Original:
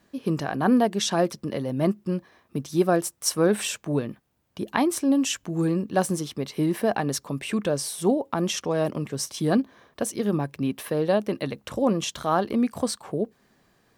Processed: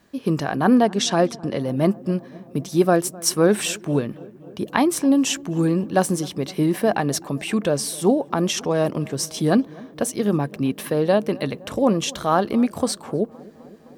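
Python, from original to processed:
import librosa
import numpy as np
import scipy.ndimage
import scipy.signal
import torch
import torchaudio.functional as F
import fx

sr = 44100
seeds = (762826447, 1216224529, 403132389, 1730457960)

y = fx.lowpass(x, sr, hz=9400.0, slope=12, at=(0.75, 1.6))
y = fx.echo_filtered(y, sr, ms=258, feedback_pct=79, hz=1600.0, wet_db=-22)
y = F.gain(torch.from_numpy(y), 4.0).numpy()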